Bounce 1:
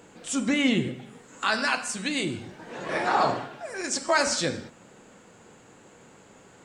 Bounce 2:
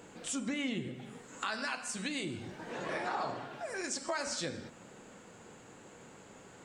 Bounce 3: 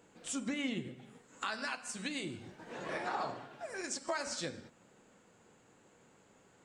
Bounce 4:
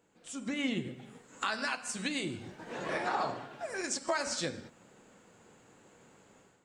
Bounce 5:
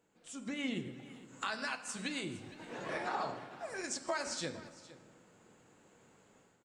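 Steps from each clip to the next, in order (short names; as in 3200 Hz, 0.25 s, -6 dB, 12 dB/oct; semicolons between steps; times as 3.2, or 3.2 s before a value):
compressor 3:1, threshold -35 dBFS, peak gain reduction 13.5 dB; gain -1.5 dB
upward expander 1.5:1, over -53 dBFS
AGC gain up to 12 dB; gain -7.5 dB
echo 0.46 s -18 dB; reverb RT60 2.7 s, pre-delay 5 ms, DRR 15.5 dB; gain -4.5 dB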